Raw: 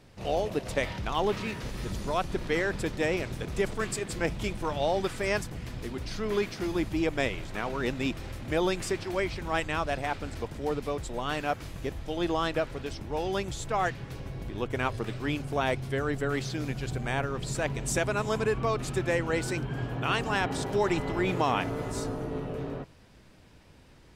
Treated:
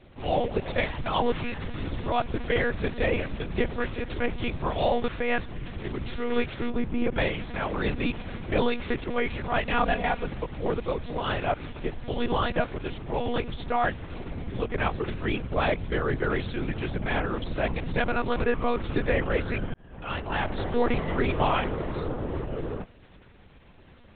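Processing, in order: ring modulator 27 Hz; monotone LPC vocoder at 8 kHz 240 Hz; 6.70–7.16 s: treble shelf 2.1 kHz -11.5 dB; 9.71–10.27 s: comb 4.2 ms, depth 79%; 19.74–20.64 s: fade in; trim +6 dB

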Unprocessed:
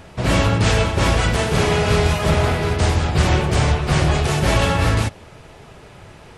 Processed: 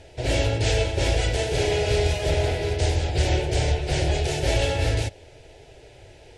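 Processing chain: low-pass 8.7 kHz 12 dB/octave; static phaser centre 480 Hz, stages 4; trim -2.5 dB

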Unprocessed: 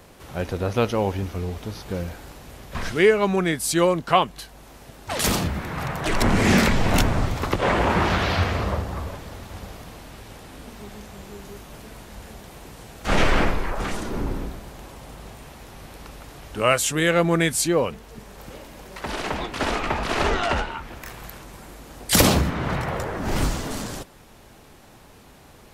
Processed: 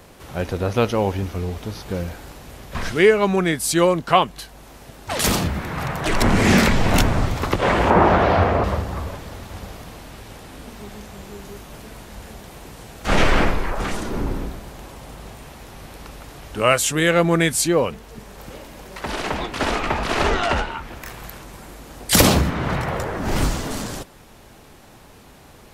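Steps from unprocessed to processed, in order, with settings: 7.90–8.64 s: FFT filter 120 Hz 0 dB, 680 Hz +9 dB, 4.4 kHz -10 dB; trim +2.5 dB

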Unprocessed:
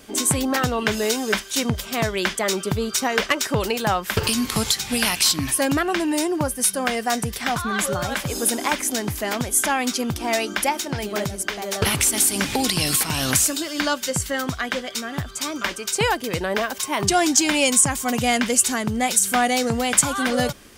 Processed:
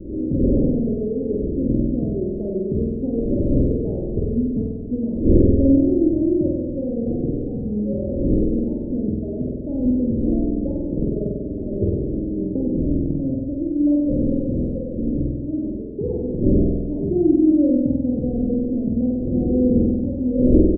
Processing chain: wind noise 360 Hz -28 dBFS; steep low-pass 500 Hz 48 dB/octave; comb 3.4 ms, depth 39%; on a send: flutter echo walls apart 8.2 m, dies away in 1.4 s

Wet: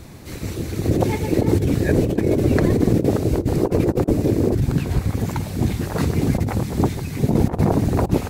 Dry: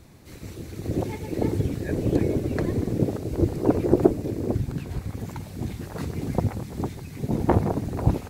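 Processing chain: compressor with a negative ratio -25 dBFS, ratio -0.5; trim +8.5 dB

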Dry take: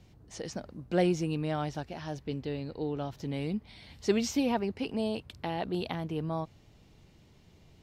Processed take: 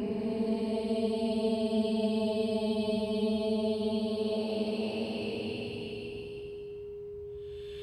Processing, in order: Paulstretch 24×, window 0.10 s, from 4.95 s; whistle 410 Hz -39 dBFS

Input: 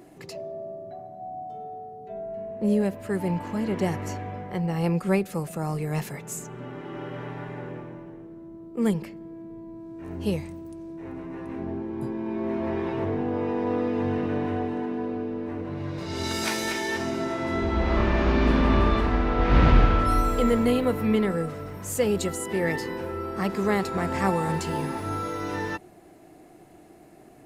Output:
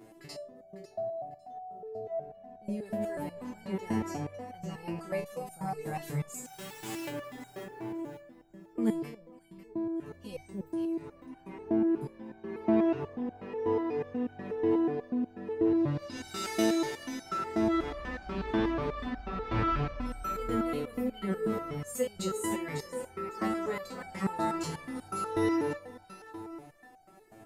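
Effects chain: 6.44–7.07 s: formants flattened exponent 0.3; in parallel at -2 dB: compressor with a negative ratio -30 dBFS, ratio -1; on the sum: echo whose repeats swap between lows and highs 275 ms, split 1 kHz, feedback 54%, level -5 dB; resonator arpeggio 8.2 Hz 110–760 Hz

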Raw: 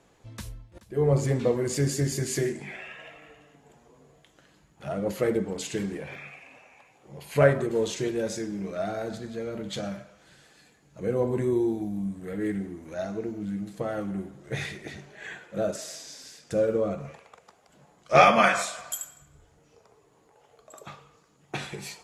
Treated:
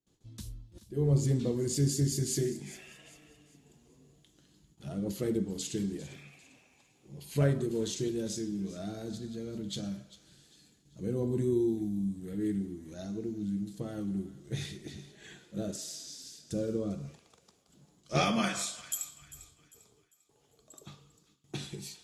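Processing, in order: gate with hold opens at -51 dBFS; high-order bell 1.1 kHz -13 dB 2.7 oct; level rider gain up to 4 dB; feedback echo behind a high-pass 398 ms, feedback 37%, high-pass 1.4 kHz, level -16 dB; trim -5.5 dB

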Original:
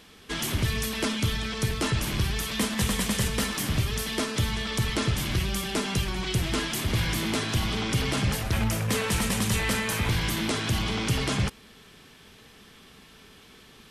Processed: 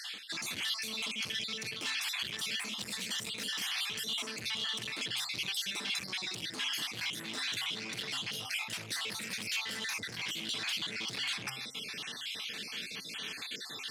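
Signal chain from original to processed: random holes in the spectrogram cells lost 45%; band-stop 390 Hz, Q 12; saturation -31 dBFS, distortion -7 dB; high-pass 100 Hz 24 dB/octave; de-hum 132.2 Hz, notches 16; reverse; compression 6:1, threshold -50 dBFS, peak gain reduction 17.5 dB; reverse; frequency weighting D; trim +7 dB

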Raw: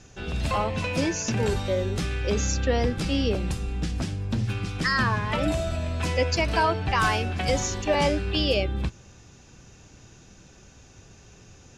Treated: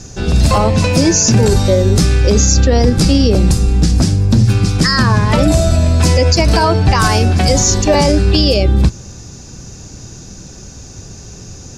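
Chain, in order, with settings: FFT filter 190 Hz 0 dB, 3.1 kHz -10 dB, 4.7 kHz +2 dB; loudness maximiser +19 dB; trim -1 dB

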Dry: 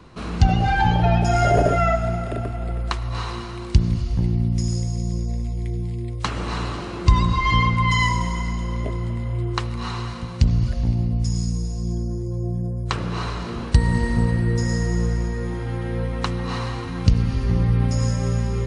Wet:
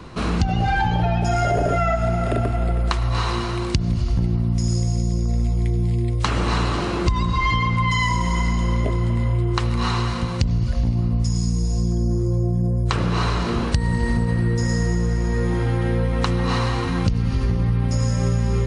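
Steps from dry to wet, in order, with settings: in parallel at +3 dB: peak limiter -13 dBFS, peak gain reduction 10.5 dB; on the sum: compression 10:1, threshold -16 dBFS, peak gain reduction 12 dB; filtered feedback delay 1172 ms, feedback 61%, low-pass 1.4 kHz, level -22.5 dB

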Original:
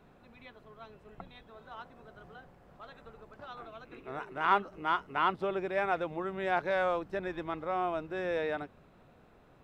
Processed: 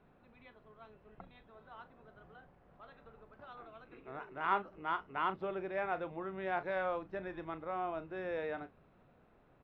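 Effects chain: low-pass 3.1 kHz 12 dB/octave; doubling 37 ms -13 dB; trim -6 dB

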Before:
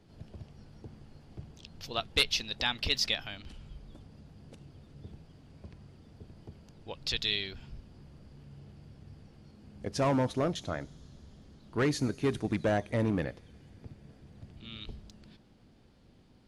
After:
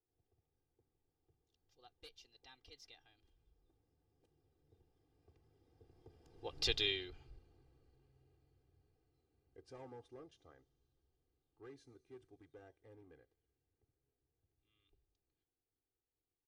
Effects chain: Doppler pass-by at 6.69 s, 22 m/s, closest 3.8 m; peaking EQ 490 Hz +5.5 dB 1.9 oct; comb 2.5 ms, depth 88%; trim -5.5 dB

